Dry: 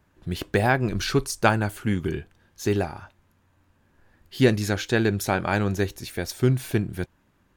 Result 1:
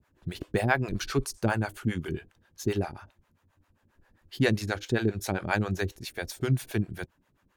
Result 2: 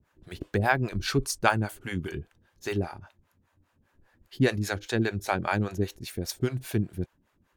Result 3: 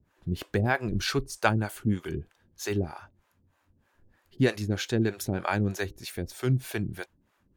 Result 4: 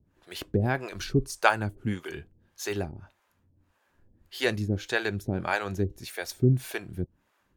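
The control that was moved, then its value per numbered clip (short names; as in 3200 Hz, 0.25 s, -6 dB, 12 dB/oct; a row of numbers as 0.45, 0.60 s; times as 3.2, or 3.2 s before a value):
harmonic tremolo, rate: 7.5, 5, 3.2, 1.7 Hz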